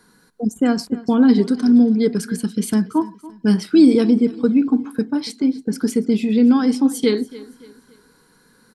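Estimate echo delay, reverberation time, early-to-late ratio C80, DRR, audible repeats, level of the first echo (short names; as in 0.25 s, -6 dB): 0.284 s, none, none, none, 2, -19.0 dB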